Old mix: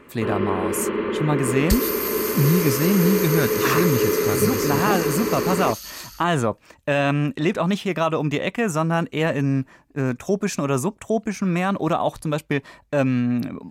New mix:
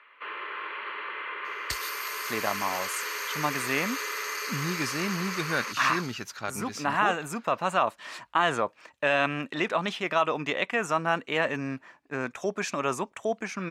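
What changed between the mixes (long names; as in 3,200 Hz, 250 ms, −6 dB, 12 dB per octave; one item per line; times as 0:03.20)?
speech: entry +2.15 s
first sound: add high-pass filter 1,100 Hz 12 dB per octave
master: add resonant band-pass 1,800 Hz, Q 0.51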